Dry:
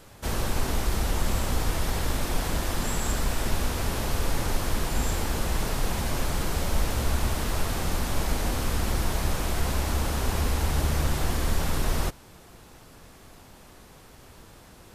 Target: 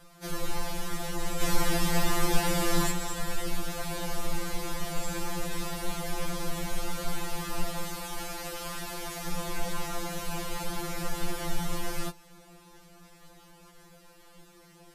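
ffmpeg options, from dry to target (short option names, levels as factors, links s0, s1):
-filter_complex "[0:a]asplit=3[s0][s1][s2];[s0]afade=t=out:st=1.4:d=0.02[s3];[s1]acontrast=81,afade=t=in:st=1.4:d=0.02,afade=t=out:st=2.9:d=0.02[s4];[s2]afade=t=in:st=2.9:d=0.02[s5];[s3][s4][s5]amix=inputs=3:normalize=0,asettb=1/sr,asplit=3[s6][s7][s8];[s6]atrim=end=7.834[s9];[s7]atrim=start=7.83:end=9.28,asetpts=PTS-STARTPTS,afade=t=in:d=0.004:c=qsin,afade=t=out:st=1.446:d=0.004:c=qsin,lowshelf=f=320:g=-10[s10];[s8]atrim=start=9.276[s11];[s9][s10]acrossfade=d=0.004:c1=hsin:c2=qsin[s12];[s12][s11]acrossfade=d=0.004:c1=qsin:c2=hsin,afftfilt=real='re*2.83*eq(mod(b,8),0)':imag='im*2.83*eq(mod(b,8),0)':win_size=2048:overlap=0.75,volume=0.794"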